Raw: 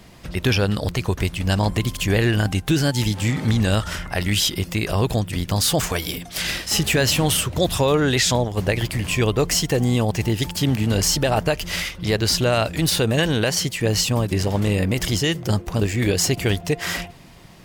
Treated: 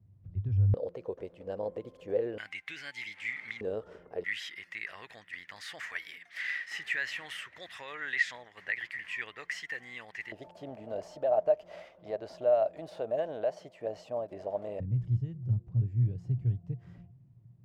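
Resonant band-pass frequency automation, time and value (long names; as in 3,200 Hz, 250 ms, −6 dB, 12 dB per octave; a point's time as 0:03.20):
resonant band-pass, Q 8.4
100 Hz
from 0:00.74 500 Hz
from 0:02.38 2,100 Hz
from 0:03.61 450 Hz
from 0:04.24 1,900 Hz
from 0:10.32 630 Hz
from 0:14.80 120 Hz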